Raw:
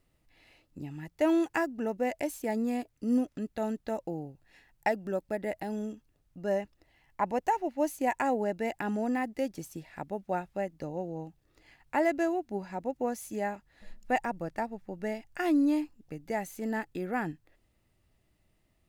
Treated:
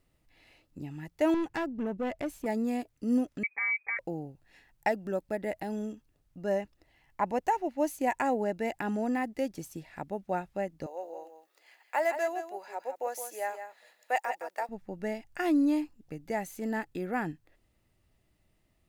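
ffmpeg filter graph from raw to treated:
-filter_complex "[0:a]asettb=1/sr,asplit=3[a][b][c];[a]atrim=end=1.344[d];[b]atrim=start=1.34:end=2.46,asetpts=PTS-STARTPTS,afade=t=in:d=0.004:c=qsin,afade=t=out:st=1.116:d=0.004:c=qsin,bass=f=250:g=7,treble=f=4k:g=-8,aeval=exprs='(tanh(22.4*val(0)+0.2)-tanh(0.2))/22.4':c=same[e];[c]atrim=start=2.456[f];[d][e]acrossfade=d=0.004:c1=hsin:c2=qsin[g];[g][f]acrossfade=d=0.004:c1=qsin:c2=hsin,asettb=1/sr,asplit=3[h][i][j];[h]atrim=end=3.434[k];[i]atrim=start=3.43:end=3.99,asetpts=PTS-STARTPTS,afade=t=in:d=0.004:c=qsin,afade=t=out:st=0.556:d=0.004:c=qsin,aecho=1:1:5.3:0.84,atrim=end_sample=24696,lowpass=f=2.1k:t=q:w=0.5098,lowpass=f=2.1k:t=q:w=0.6013,lowpass=f=2.1k:t=q:w=0.9,lowpass=f=2.1k:t=q:w=2.563,afreqshift=-2500[l];[j]atrim=start=3.986[m];[k][l]acrossfade=d=0.004:c1=hsin:c2=qsin[n];[n][m]acrossfade=d=0.004:c1=qsin:c2=hsin,asettb=1/sr,asplit=3[o][p][q];[o]atrim=end=10.864[r];[p]atrim=start=10.86:end=14.69,asetpts=PTS-STARTPTS,afade=t=in:d=0.004:c=qsin,afade=t=out:st=3.826:d=0.004:c=qsin,highpass=f=490:w=0.5412,highpass=f=490:w=1.3066,highshelf=f=12k:g=9.5,aecho=1:1:165:0.355,atrim=end_sample=168903[s];[q]atrim=start=14.686[t];[r][s]acrossfade=d=0.004:c1=hsin:c2=qsin[u];[u][t]acrossfade=d=0.004:c1=qsin:c2=hsin"

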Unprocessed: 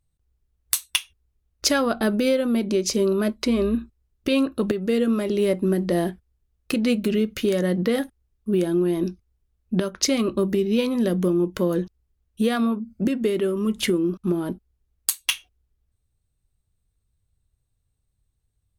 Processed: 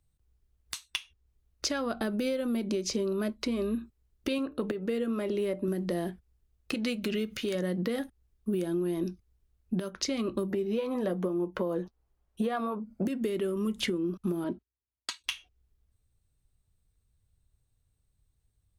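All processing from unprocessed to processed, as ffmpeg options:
-filter_complex "[0:a]asettb=1/sr,asplit=3[a][b][c];[a]atrim=end=4.384[d];[b]atrim=start=4.38:end=5.68,asetpts=PTS-STARTPTS,afade=t=in:d=0.004:c=qsin,afade=t=out:st=1.296:d=0.004:c=qsin,bass=f=250:g=-5,treble=f=4k:g=-10,bandreject=f=147.5:t=h:w=4,bandreject=f=295:t=h:w=4,bandreject=f=442.5:t=h:w=4,bandreject=f=590:t=h:w=4,bandreject=f=737.5:t=h:w=4,bandreject=f=885:t=h:w=4[e];[c]atrim=start=5.676[f];[d][e]acrossfade=d=0.004:c1=hsin:c2=qsin[g];[g][f]acrossfade=d=0.004:c1=qsin:c2=hsin,asettb=1/sr,asplit=3[h][i][j];[h]atrim=end=6.744[k];[i]atrim=start=6.74:end=7.55,asetpts=PTS-STARTPTS,afade=t=in:d=0.004:c=qsin,afade=t=out:st=0.806:d=0.004:c=qsin,tiltshelf=f=700:g=-4,acompressor=mode=upward:threshold=-25dB:ratio=2.5:attack=3.2:release=140:knee=2.83:detection=peak[l];[j]atrim=start=7.546[m];[k][l]acrossfade=d=0.004:c1=hsin:c2=qsin[n];[n][m]acrossfade=d=0.004:c1=qsin:c2=hsin,asettb=1/sr,asplit=3[o][p][q];[o]atrim=end=10.504[r];[p]atrim=start=10.5:end=13.07,asetpts=PTS-STARTPTS,afade=t=in:d=0.004:c=qsin,afade=t=out:st=2.566:d=0.004:c=qsin,acrossover=split=4200[s][t];[t]acompressor=threshold=-49dB:ratio=4:attack=1:release=60[u];[s][u]amix=inputs=2:normalize=0,equalizer=f=800:t=o:w=2.2:g=13,flanger=delay=5.3:depth=1.3:regen=-50:speed=1.1:shape=triangular[v];[q]atrim=start=13.066[w];[r][v]acrossfade=d=0.004:c1=hsin:c2=qsin[x];[x][w]acrossfade=d=0.004:c1=qsin:c2=hsin,asettb=1/sr,asplit=3[y][z][aa];[y]atrim=end=14.444[ab];[z]atrim=start=14.44:end=15.24,asetpts=PTS-STARTPTS,afade=t=in:d=0.004:c=qsin,afade=t=out:st=0.796:d=0.004:c=qsin,agate=range=-19dB:threshold=-54dB:ratio=16:release=100:detection=peak,highpass=100,lowpass=4.2k,aecho=1:1:3.1:0.46,atrim=end_sample=35280[ac];[aa]atrim=start=15.236[ad];[ab][ac]acrossfade=d=0.004:c1=hsin:c2=qsin[ae];[ae][ad]acrossfade=d=0.004:c1=qsin:c2=hsin,alimiter=limit=-12.5dB:level=0:latency=1:release=372,acrossover=split=110|7000[af][ag][ah];[af]acompressor=threshold=-53dB:ratio=4[ai];[ag]acompressor=threshold=-29dB:ratio=4[aj];[ah]acompressor=threshold=-54dB:ratio=4[ak];[ai][aj][ak]amix=inputs=3:normalize=0"

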